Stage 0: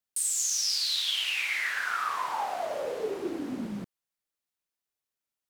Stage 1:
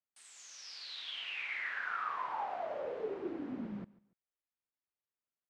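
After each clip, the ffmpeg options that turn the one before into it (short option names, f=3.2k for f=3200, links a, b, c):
-af "lowpass=2.3k,aecho=1:1:144|288:0.0841|0.0252,volume=-6.5dB"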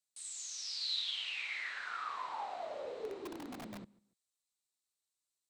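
-filter_complex "[0:a]equalizer=f=160:t=o:w=0.33:g=-6,equalizer=f=1.6k:t=o:w=0.33:g=-4,equalizer=f=4k:t=o:w=0.33:g=9,equalizer=f=8k:t=o:w=0.33:g=7,acrossover=split=350[a][b];[a]aeval=exprs='(mod(89.1*val(0)+1,2)-1)/89.1':c=same[c];[b]equalizer=f=7.4k:t=o:w=1.8:g=11[d];[c][d]amix=inputs=2:normalize=0,volume=-3.5dB"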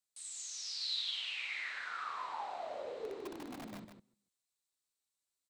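-af "aecho=1:1:152:0.398,volume=-1dB"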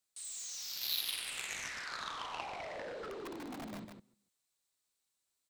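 -af "aeval=exprs='0.0531*(cos(1*acos(clip(val(0)/0.0531,-1,1)))-cos(1*PI/2))+0.0188*(cos(7*acos(clip(val(0)/0.0531,-1,1)))-cos(7*PI/2))':c=same,volume=1dB"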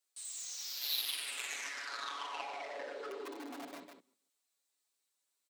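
-filter_complex "[0:a]highpass=f=280:w=0.5412,highpass=f=280:w=1.3066,aecho=1:1:7.1:0.97,asplit=2[a][b];[b]aeval=exprs='(mod(10.6*val(0)+1,2)-1)/10.6':c=same,volume=-8.5dB[c];[a][c]amix=inputs=2:normalize=0,volume=-5.5dB"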